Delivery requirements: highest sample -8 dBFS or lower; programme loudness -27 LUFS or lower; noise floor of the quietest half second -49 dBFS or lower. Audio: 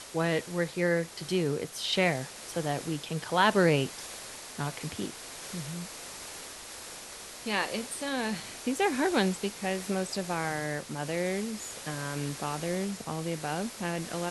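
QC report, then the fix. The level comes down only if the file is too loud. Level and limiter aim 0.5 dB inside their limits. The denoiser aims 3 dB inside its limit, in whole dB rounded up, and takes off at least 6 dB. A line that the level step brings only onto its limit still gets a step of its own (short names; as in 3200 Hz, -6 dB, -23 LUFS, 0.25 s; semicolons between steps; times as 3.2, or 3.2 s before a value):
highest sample -9.5 dBFS: OK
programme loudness -31.5 LUFS: OK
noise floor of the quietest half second -44 dBFS: fail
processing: denoiser 8 dB, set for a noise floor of -44 dBFS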